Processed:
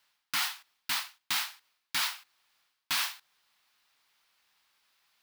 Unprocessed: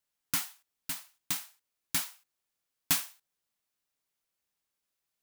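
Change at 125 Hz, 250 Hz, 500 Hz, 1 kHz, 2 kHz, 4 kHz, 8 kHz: −10.0, −8.5, −1.0, +7.5, +7.5, +7.0, −2.0 decibels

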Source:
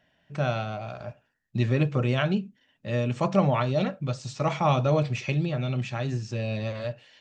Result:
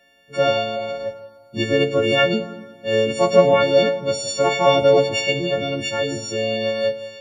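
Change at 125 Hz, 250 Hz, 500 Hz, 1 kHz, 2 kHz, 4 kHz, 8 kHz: −4.5 dB, +3.0 dB, +12.5 dB, +7.0 dB, +11.0 dB, +15.0 dB, can't be measured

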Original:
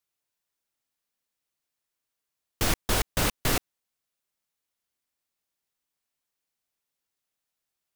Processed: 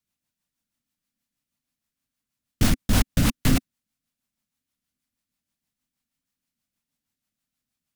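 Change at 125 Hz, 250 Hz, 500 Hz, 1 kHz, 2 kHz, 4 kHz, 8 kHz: +9.0, +10.5, −2.5, −2.0, −0.5, 0.0, 0.0 decibels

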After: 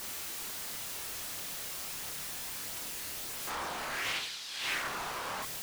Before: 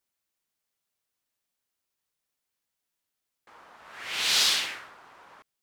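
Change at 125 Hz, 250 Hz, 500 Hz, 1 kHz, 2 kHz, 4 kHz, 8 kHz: can't be measured, +5.0 dB, +4.5 dB, +3.5 dB, −2.0 dB, −9.5 dB, −3.5 dB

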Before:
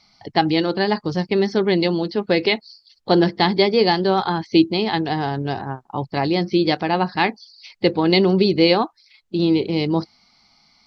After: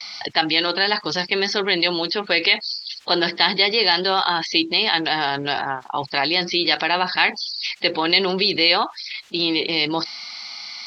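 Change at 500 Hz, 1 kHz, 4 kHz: −5.5, 0.0, +7.5 decibels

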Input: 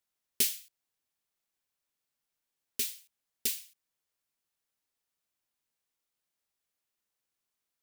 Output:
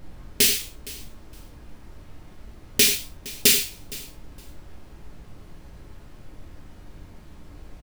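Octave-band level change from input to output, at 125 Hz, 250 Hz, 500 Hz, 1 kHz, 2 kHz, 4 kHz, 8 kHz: +24.5 dB, +19.0 dB, +20.0 dB, can't be measured, +18.5 dB, +16.5 dB, +13.5 dB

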